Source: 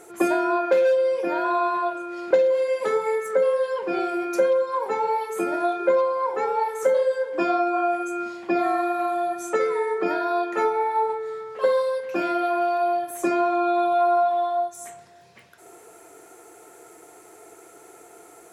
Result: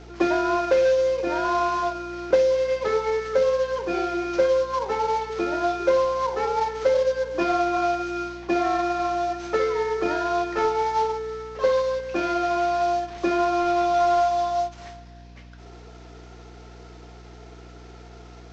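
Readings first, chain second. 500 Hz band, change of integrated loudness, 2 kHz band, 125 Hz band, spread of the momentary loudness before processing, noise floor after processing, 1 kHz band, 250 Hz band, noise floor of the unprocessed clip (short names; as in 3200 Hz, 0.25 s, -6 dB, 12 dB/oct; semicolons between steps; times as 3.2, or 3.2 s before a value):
-0.5 dB, 0.0 dB, 0.0 dB, n/a, 6 LU, -44 dBFS, -0.5 dB, 0.0 dB, -49 dBFS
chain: CVSD 32 kbps; hum 60 Hz, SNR 21 dB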